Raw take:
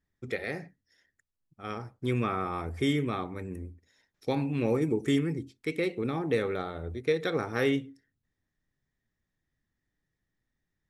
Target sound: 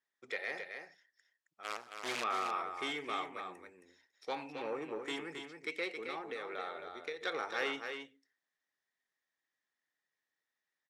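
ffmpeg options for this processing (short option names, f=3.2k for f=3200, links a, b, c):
-filter_complex "[0:a]asplit=3[a][b][c];[a]afade=t=out:st=4.5:d=0.02[d];[b]highshelf=f=2.7k:g=-11.5,afade=t=in:st=4.5:d=0.02,afade=t=out:st=5.06:d=0.02[e];[c]afade=t=in:st=5.06:d=0.02[f];[d][e][f]amix=inputs=3:normalize=0,asettb=1/sr,asplit=3[g][h][i];[g]atrim=end=6.024[j];[h]atrim=start=6.02:end=7.21,asetpts=PTS-STARTPTS,afade=t=in:d=0.004:c=qsin,afade=t=out:st=1.186:d=0.004:c=qsin,acompressor=threshold=-30dB:ratio=6[k];[i]atrim=start=7.206[l];[j][k]acrossfade=d=0.004:c1=hsin:c2=qsin[m];[m][l]acrossfade=d=0.004:c1=qsin:c2=hsin,asoftclip=type=tanh:threshold=-20.5dB,asettb=1/sr,asplit=3[n][o][p];[n]atrim=end=1.634[q];[o]atrim=start=1.63:end=2.24,asetpts=PTS-STARTPTS,afade=t=in:d=0.004:c=qsin,afade=t=out:st=0.606:d=0.004:c=qsin,acrusher=bits=6:dc=4:mix=0:aa=0.000001[r];[p]atrim=start=2.236[s];[q][r]acrossfade=d=0.004:c1=hsin:c2=qsin[t];[t][s]acrossfade=d=0.004:c1=qsin:c2=hsin,highpass=710,lowpass=7.1k,aecho=1:1:269:0.473,volume=-1dB"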